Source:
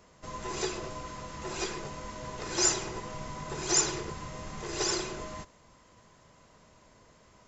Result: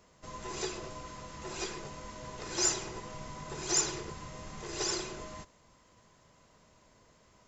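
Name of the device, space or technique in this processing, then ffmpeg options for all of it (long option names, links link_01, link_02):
exciter from parts: -filter_complex "[0:a]asplit=2[link_01][link_02];[link_02]highpass=2000,asoftclip=type=tanh:threshold=-22.5dB,volume=-14dB[link_03];[link_01][link_03]amix=inputs=2:normalize=0,volume=-4dB"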